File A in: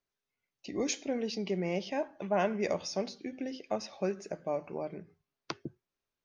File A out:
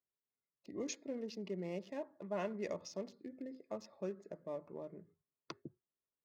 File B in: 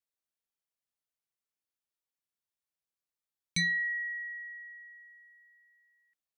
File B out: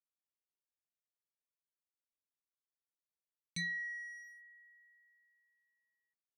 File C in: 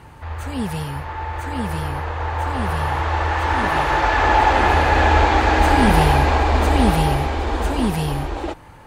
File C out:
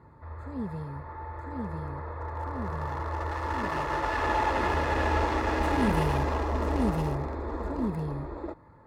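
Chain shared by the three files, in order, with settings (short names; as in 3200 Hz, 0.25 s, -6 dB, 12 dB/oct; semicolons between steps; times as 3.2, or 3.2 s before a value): Wiener smoothing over 15 samples; notch comb 770 Hz; gain -8.5 dB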